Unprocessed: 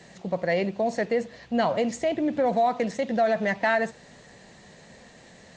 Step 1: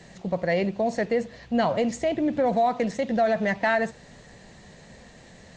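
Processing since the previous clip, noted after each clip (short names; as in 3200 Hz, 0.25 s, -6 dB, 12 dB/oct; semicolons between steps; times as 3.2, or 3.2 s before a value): low shelf 98 Hz +11.5 dB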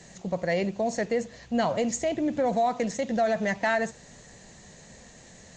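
bell 6800 Hz +11 dB 0.63 oct; gain -2.5 dB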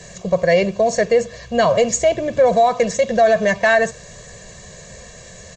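comb 1.8 ms, depth 80%; gain +8.5 dB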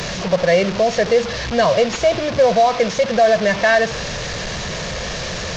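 delta modulation 32 kbps, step -18.5 dBFS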